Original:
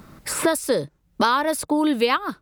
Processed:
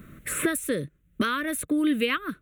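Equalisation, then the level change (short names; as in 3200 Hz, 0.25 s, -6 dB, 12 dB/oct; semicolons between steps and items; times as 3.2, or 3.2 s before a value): dynamic EQ 680 Hz, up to -6 dB, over -32 dBFS, Q 1.2; fixed phaser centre 2100 Hz, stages 4; 0.0 dB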